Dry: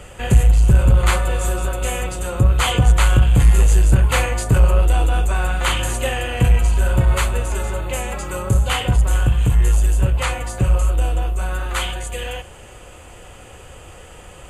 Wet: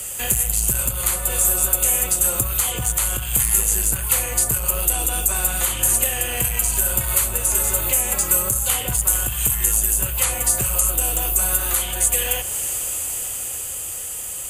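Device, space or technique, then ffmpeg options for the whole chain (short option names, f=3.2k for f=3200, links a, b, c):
FM broadcast chain: -filter_complex "[0:a]highpass=f=44:p=1,dynaudnorm=f=170:g=21:m=11.5dB,acrossover=split=82|740|2400[a][b][c][d];[a]acompressor=threshold=-23dB:ratio=4[e];[b]acompressor=threshold=-24dB:ratio=4[f];[c]acompressor=threshold=-29dB:ratio=4[g];[d]acompressor=threshold=-37dB:ratio=4[h];[e][f][g][h]amix=inputs=4:normalize=0,aemphasis=mode=production:type=75fm,alimiter=limit=-12dB:level=0:latency=1:release=313,asoftclip=type=hard:threshold=-14dB,lowpass=f=15k:w=0.5412,lowpass=f=15k:w=1.3066,aemphasis=mode=production:type=75fm,volume=-3dB"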